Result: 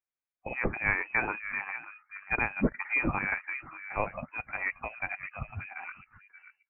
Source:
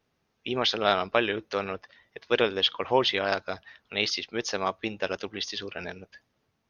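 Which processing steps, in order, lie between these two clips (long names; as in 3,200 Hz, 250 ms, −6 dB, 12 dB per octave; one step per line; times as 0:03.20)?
high-pass filter 1,100 Hz 6 dB per octave
slap from a distant wall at 100 metres, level −10 dB
noise reduction from a noise print of the clip's start 22 dB
formants moved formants −4 semitones
voice inversion scrambler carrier 2,800 Hz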